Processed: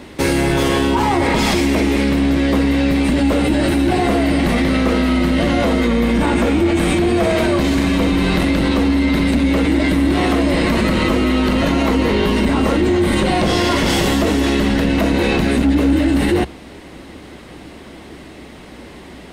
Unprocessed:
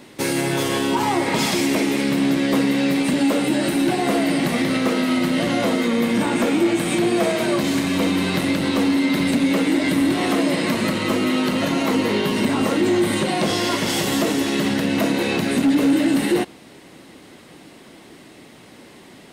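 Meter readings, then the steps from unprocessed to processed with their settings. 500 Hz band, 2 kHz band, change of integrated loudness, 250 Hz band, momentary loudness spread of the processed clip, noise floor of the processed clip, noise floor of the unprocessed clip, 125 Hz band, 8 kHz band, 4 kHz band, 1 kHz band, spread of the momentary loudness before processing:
+4.0 dB, +3.5 dB, +4.0 dB, +3.5 dB, 1 LU, -37 dBFS, -45 dBFS, +8.5 dB, -1.0 dB, +2.0 dB, +4.0 dB, 2 LU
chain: octave divider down 2 oct, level -4 dB; treble shelf 4.9 kHz -8 dB; in parallel at -1 dB: compressor with a negative ratio -23 dBFS, ratio -1

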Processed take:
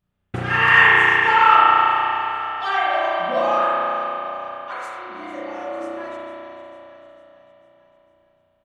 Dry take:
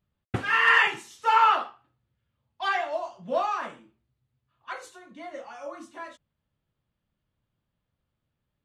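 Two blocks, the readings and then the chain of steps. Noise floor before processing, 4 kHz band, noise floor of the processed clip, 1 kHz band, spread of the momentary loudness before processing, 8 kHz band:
-82 dBFS, +7.0 dB, -65 dBFS, +9.0 dB, 22 LU, no reading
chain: feedback delay 451 ms, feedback 54%, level -14 dB; spring tank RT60 3.5 s, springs 33 ms, chirp 70 ms, DRR -8 dB

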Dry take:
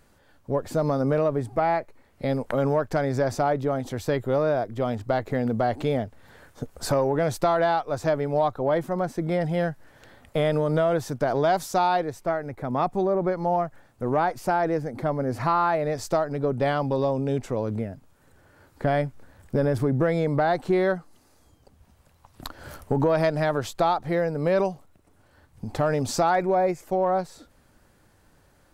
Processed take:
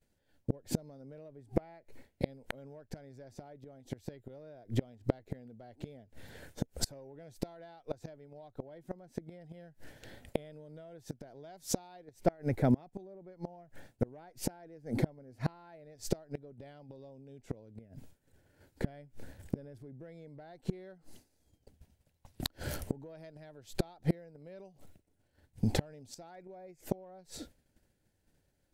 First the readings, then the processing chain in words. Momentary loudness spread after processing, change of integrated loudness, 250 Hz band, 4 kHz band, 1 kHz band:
18 LU, -14.5 dB, -11.0 dB, -8.0 dB, -24.0 dB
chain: band-stop 1.2 kHz, Q 11; expander -46 dBFS; peaking EQ 1.1 kHz -11 dB 1 oct; inverted gate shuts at -21 dBFS, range -31 dB; trim +5 dB

